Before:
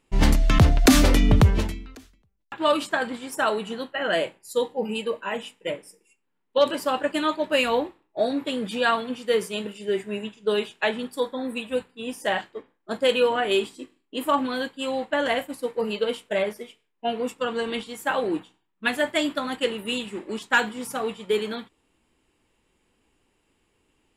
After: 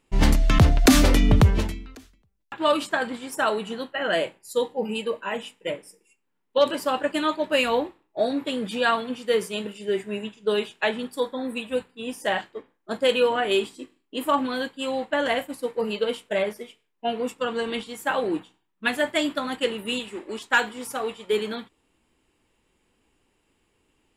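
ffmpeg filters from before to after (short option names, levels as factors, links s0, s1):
-filter_complex "[0:a]asettb=1/sr,asplit=3[s0][s1][s2];[s0]atrim=end=19.994[s3];[s1]atrim=start=19.99:end=21.32,asetpts=PTS-STARTPTS,afade=t=in:d=0.004:c=qsin,afade=t=out:st=1.326:d=0.004:c=qsin,equalizer=f=170:t=o:w=0.77:g=-10[s4];[s2]atrim=start=21.316[s5];[s3][s4]acrossfade=d=0.004:c1=hsin:c2=qsin[s6];[s6][s5]acrossfade=d=0.004:c1=qsin:c2=hsin"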